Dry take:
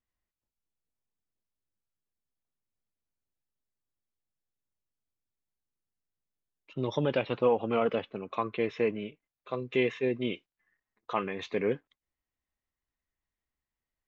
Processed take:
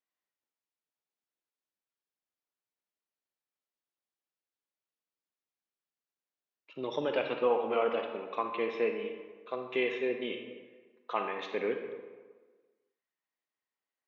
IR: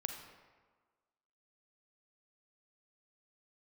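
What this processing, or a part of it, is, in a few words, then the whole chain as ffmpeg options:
supermarket ceiling speaker: -filter_complex "[0:a]highpass=340,lowpass=5.1k[a];[1:a]atrim=start_sample=2205[b];[a][b]afir=irnorm=-1:irlink=0"

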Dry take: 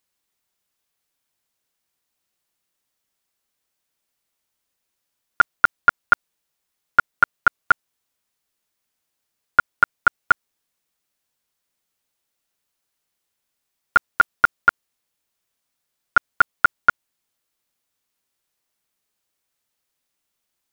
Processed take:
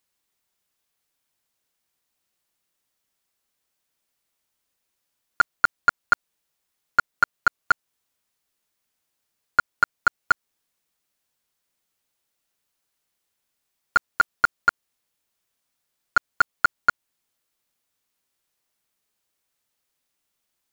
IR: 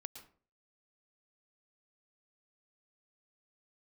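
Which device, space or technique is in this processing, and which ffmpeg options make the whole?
clipper into limiter: -af "asoftclip=type=hard:threshold=-6dB,alimiter=limit=-9dB:level=0:latency=1:release=213"

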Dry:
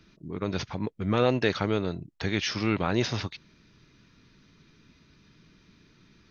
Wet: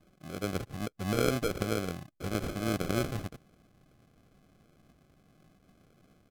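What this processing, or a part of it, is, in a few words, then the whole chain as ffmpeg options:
crushed at another speed: -af "asetrate=55125,aresample=44100,acrusher=samples=38:mix=1:aa=0.000001,asetrate=35280,aresample=44100,volume=-4.5dB"

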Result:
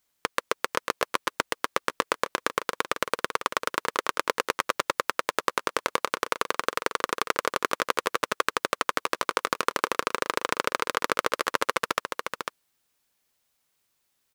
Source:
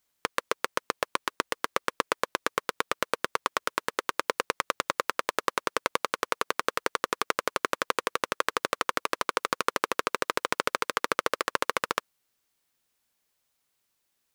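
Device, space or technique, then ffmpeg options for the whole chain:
ducked delay: -filter_complex "[0:a]asplit=3[a][b][c];[b]adelay=498,volume=-6dB[d];[c]apad=whole_len=654629[e];[d][e]sidechaincompress=threshold=-31dB:ratio=4:attack=6.4:release=102[f];[a][f]amix=inputs=2:normalize=0,volume=1.5dB"

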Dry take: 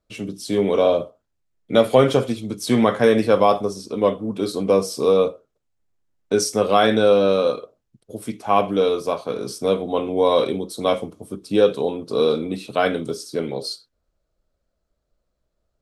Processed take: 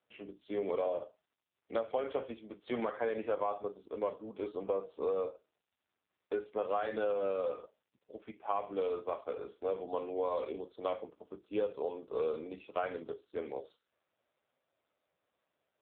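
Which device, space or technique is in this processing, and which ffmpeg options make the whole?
voicemail: -filter_complex "[0:a]asplit=3[a][b][c];[a]afade=t=out:st=9.15:d=0.02[d];[b]highpass=f=160:w=0.5412,highpass=f=160:w=1.3066,afade=t=in:st=9.15:d=0.02,afade=t=out:st=10.75:d=0.02[e];[c]afade=t=in:st=10.75:d=0.02[f];[d][e][f]amix=inputs=3:normalize=0,highpass=450,lowpass=2.7k,acompressor=threshold=-20dB:ratio=8,volume=-8.5dB" -ar 8000 -c:a libopencore_amrnb -b:a 5900

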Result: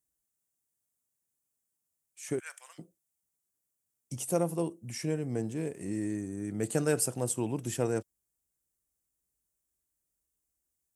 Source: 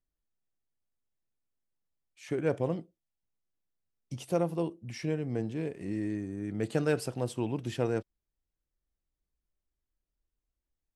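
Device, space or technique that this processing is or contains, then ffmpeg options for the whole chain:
budget condenser microphone: -filter_complex "[0:a]asplit=3[a][b][c];[a]afade=t=out:st=2.38:d=0.02[d];[b]highpass=f=1.4k:w=0.5412,highpass=f=1.4k:w=1.3066,afade=t=in:st=2.38:d=0.02,afade=t=out:st=2.78:d=0.02[e];[c]afade=t=in:st=2.78:d=0.02[f];[d][e][f]amix=inputs=3:normalize=0,highpass=75,highshelf=f=5.7k:t=q:w=1.5:g=12.5"

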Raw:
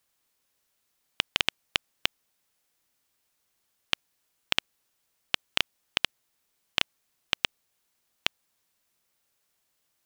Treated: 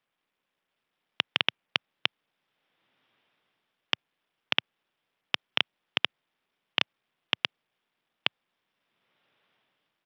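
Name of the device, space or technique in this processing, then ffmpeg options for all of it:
Bluetooth headset: -af "highpass=f=120:w=0.5412,highpass=f=120:w=1.3066,dynaudnorm=f=150:g=9:m=12.5dB,aresample=8000,aresample=44100,volume=-1dB" -ar 44100 -c:a sbc -b:a 64k

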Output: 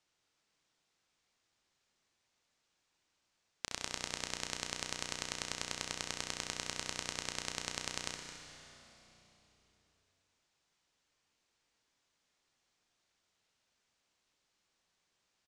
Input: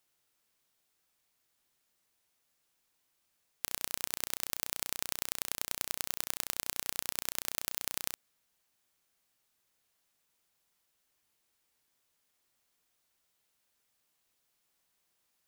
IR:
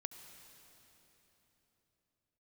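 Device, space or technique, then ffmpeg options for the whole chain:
cave: -filter_complex "[0:a]aecho=1:1:216:0.224[a];[1:a]atrim=start_sample=2205[b];[a][b]afir=irnorm=-1:irlink=0,lowpass=f=7.1k:w=0.5412,lowpass=f=7.1k:w=1.3066,volume=4.5dB"

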